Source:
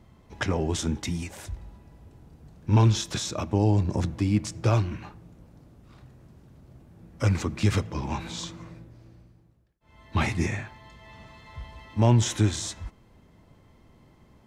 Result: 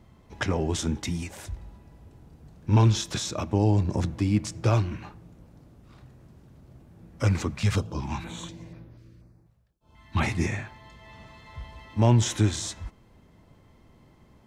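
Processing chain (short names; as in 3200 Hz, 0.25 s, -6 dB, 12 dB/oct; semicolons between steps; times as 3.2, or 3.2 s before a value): 7.51–10.23 stepped notch 4.1 Hz 310–7900 Hz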